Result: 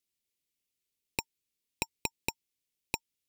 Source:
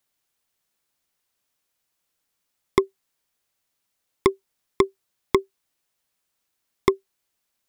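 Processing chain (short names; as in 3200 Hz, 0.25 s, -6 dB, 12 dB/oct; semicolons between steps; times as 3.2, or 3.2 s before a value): FFT order left unsorted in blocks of 16 samples; speed mistake 33 rpm record played at 78 rpm; band shelf 1000 Hz -15.5 dB; gain -4.5 dB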